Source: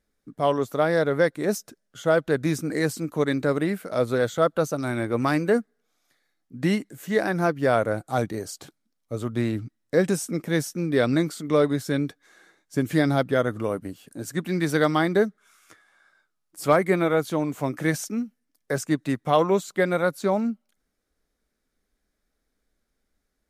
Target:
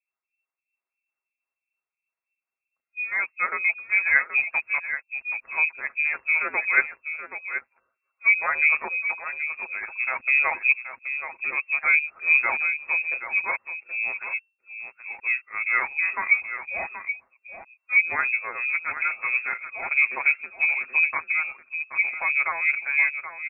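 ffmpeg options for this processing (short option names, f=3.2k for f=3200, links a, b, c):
-filter_complex "[0:a]areverse,aecho=1:1:6.9:0.57,asplit=2[a][b];[b]aeval=exprs='val(0)*gte(abs(val(0)),0.126)':c=same,volume=-10dB[c];[a][c]amix=inputs=2:normalize=0,agate=range=-10dB:threshold=-39dB:ratio=16:detection=peak,acrossover=split=610[d][e];[d]aeval=exprs='val(0)*(1-1/2+1/2*cos(2*PI*3*n/s))':c=same[f];[e]aeval=exprs='val(0)*(1-1/2-1/2*cos(2*PI*3*n/s))':c=same[g];[f][g]amix=inputs=2:normalize=0,asplit=2[h][i];[i]aecho=0:1:777:0.316[j];[h][j]amix=inputs=2:normalize=0,lowpass=f=2.3k:t=q:w=0.5098,lowpass=f=2.3k:t=q:w=0.6013,lowpass=f=2.3k:t=q:w=0.9,lowpass=f=2.3k:t=q:w=2.563,afreqshift=-2700"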